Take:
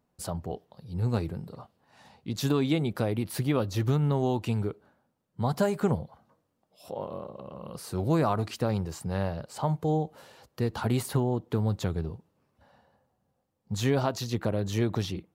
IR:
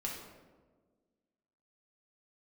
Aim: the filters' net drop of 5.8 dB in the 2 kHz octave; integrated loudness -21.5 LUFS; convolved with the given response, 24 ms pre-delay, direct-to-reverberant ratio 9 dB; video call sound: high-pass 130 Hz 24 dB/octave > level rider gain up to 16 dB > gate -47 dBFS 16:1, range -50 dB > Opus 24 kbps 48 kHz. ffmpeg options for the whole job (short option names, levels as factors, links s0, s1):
-filter_complex "[0:a]equalizer=f=2000:t=o:g=-8,asplit=2[s0][s1];[1:a]atrim=start_sample=2205,adelay=24[s2];[s1][s2]afir=irnorm=-1:irlink=0,volume=0.316[s3];[s0][s3]amix=inputs=2:normalize=0,highpass=f=130:w=0.5412,highpass=f=130:w=1.3066,dynaudnorm=m=6.31,agate=range=0.00316:threshold=0.00447:ratio=16,volume=2.66" -ar 48000 -c:a libopus -b:a 24k